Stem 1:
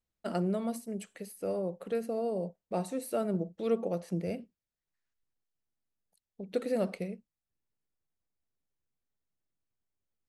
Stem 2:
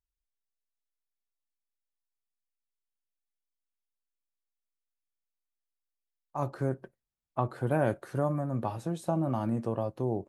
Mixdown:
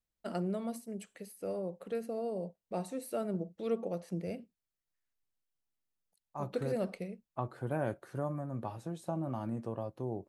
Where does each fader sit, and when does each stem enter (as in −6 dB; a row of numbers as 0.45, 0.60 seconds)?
−4.0, −7.0 decibels; 0.00, 0.00 seconds